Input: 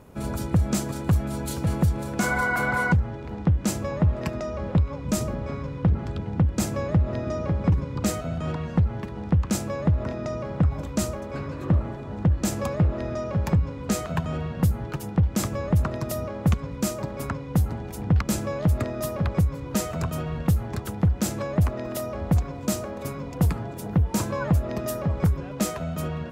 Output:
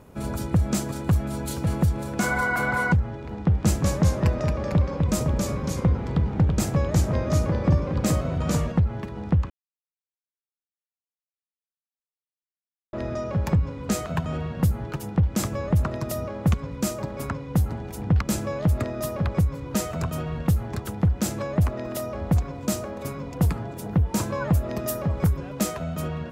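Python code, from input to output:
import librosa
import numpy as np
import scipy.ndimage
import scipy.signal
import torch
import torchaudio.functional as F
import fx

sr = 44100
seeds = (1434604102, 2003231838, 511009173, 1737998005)

y = fx.echo_pitch(x, sr, ms=168, semitones=-1, count=2, db_per_echo=-3.0, at=(3.33, 8.72))
y = fx.high_shelf(y, sr, hz=9700.0, db=8.5, at=(24.5, 25.63))
y = fx.edit(y, sr, fx.silence(start_s=9.5, length_s=3.43), tone=tone)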